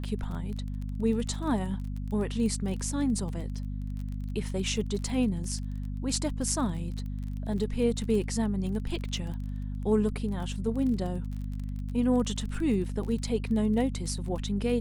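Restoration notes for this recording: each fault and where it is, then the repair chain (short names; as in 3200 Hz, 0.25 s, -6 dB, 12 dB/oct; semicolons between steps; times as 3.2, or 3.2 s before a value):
crackle 26/s -35 dBFS
hum 50 Hz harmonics 5 -34 dBFS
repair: de-click; de-hum 50 Hz, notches 5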